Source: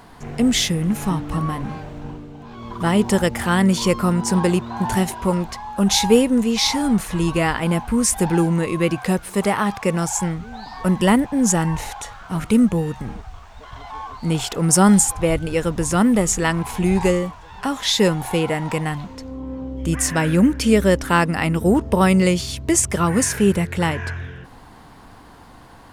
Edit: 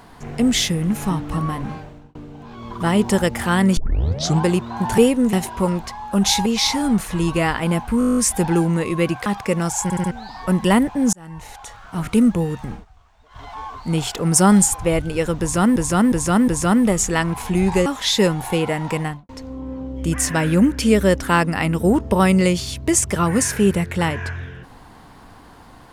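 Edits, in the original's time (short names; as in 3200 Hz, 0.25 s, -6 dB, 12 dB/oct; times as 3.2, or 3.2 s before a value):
1.71–2.15 fade out
3.77 tape start 0.68 s
6.11–6.46 move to 4.98
7.99 stutter 0.02 s, 10 plays
9.08–9.63 cut
10.2 stutter in place 0.07 s, 4 plays
11.5–12.43 fade in linear
13.09–13.79 dip -13.5 dB, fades 0.13 s
15.77–16.13 loop, 4 plays
17.15–17.67 cut
18.83–19.1 studio fade out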